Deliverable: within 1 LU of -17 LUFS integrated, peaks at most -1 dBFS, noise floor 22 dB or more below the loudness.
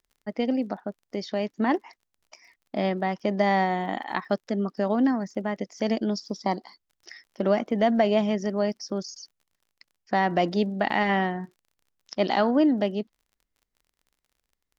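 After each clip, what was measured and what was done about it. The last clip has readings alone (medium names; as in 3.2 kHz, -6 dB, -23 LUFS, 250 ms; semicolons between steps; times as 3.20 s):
tick rate 35 per s; loudness -26.5 LUFS; peak level -9.5 dBFS; loudness target -17.0 LUFS
-> de-click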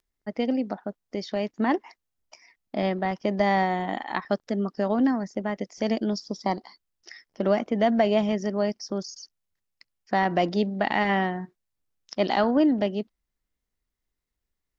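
tick rate 0.068 per s; loudness -26.5 LUFS; peak level -9.5 dBFS; loudness target -17.0 LUFS
-> trim +9.5 dB; peak limiter -1 dBFS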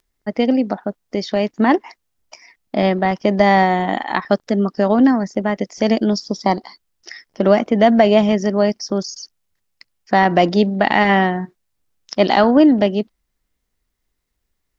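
loudness -17.0 LUFS; peak level -1.0 dBFS; noise floor -74 dBFS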